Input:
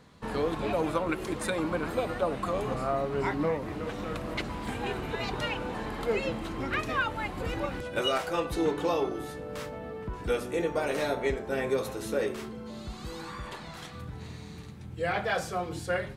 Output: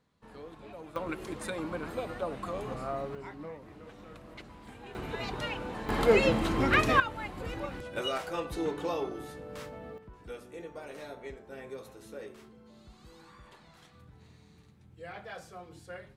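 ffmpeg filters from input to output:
ffmpeg -i in.wav -af "asetnsamples=nb_out_samples=441:pad=0,asendcmd='0.96 volume volume -6dB;3.15 volume volume -14.5dB;4.95 volume volume -3.5dB;5.89 volume volume 6.5dB;7 volume volume -5dB;9.98 volume volume -14.5dB',volume=-17.5dB" out.wav

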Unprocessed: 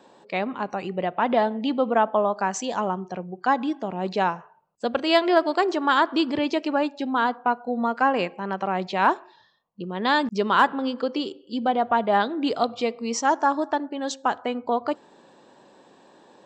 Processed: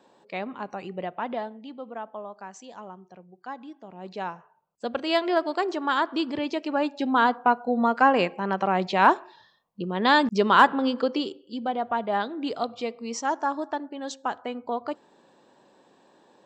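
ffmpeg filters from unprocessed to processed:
ffmpeg -i in.wav -af "volume=12dB,afade=type=out:start_time=1.03:duration=0.59:silence=0.316228,afade=type=in:start_time=3.8:duration=1.14:silence=0.266073,afade=type=in:start_time=6.65:duration=0.47:silence=0.473151,afade=type=out:start_time=10.96:duration=0.62:silence=0.421697" out.wav

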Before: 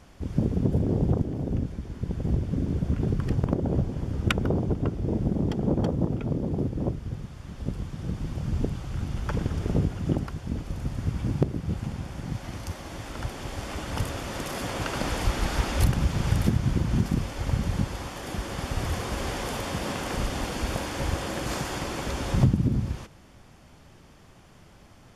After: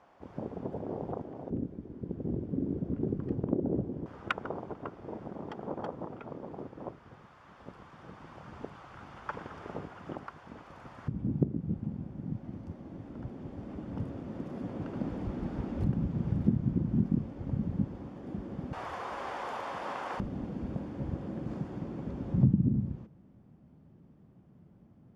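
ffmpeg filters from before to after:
ffmpeg -i in.wav -af "asetnsamples=nb_out_samples=441:pad=0,asendcmd='1.5 bandpass f 330;4.06 bandpass f 1100;11.08 bandpass f 220;18.73 bandpass f 970;20.2 bandpass f 190',bandpass=frequency=840:width_type=q:width=1.4:csg=0" out.wav

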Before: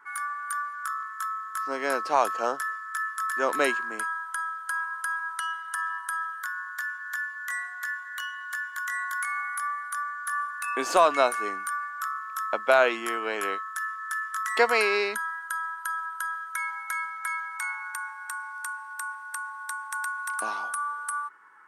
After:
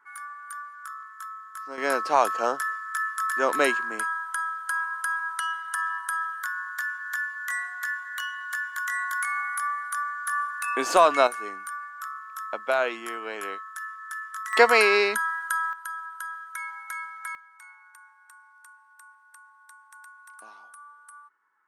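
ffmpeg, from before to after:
ffmpeg -i in.wav -af "asetnsamples=nb_out_samples=441:pad=0,asendcmd='1.78 volume volume 2dB;11.27 volume volume -4.5dB;14.53 volume volume 4.5dB;15.73 volume volume -4dB;17.35 volume volume -17dB',volume=-7dB" out.wav

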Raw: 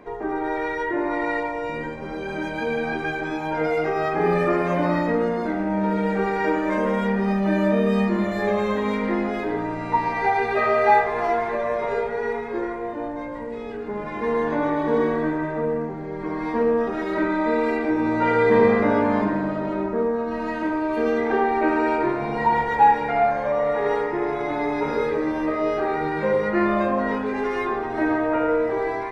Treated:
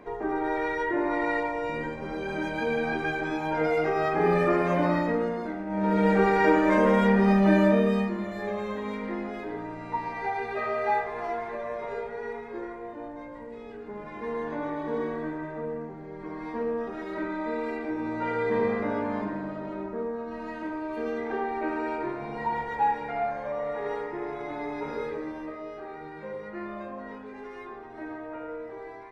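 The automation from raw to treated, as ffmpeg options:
ffmpeg -i in.wav -af "volume=9.5dB,afade=type=out:start_time=4.83:duration=0.83:silence=0.398107,afade=type=in:start_time=5.66:duration=0.42:silence=0.251189,afade=type=out:start_time=7.49:duration=0.66:silence=0.281838,afade=type=out:start_time=25.06:duration=0.61:silence=0.446684" out.wav

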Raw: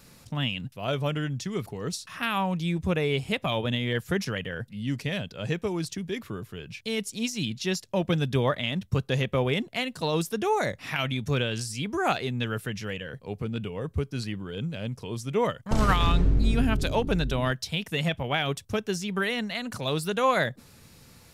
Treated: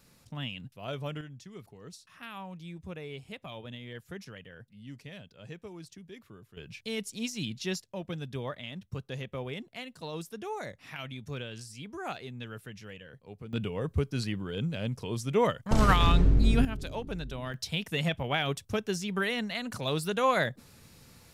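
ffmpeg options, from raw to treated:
ffmpeg -i in.wav -af "asetnsamples=nb_out_samples=441:pad=0,asendcmd='1.21 volume volume -15.5dB;6.57 volume volume -5dB;7.82 volume volume -12dB;13.53 volume volume 0dB;16.65 volume volume -11dB;17.54 volume volume -2.5dB',volume=-8.5dB" out.wav

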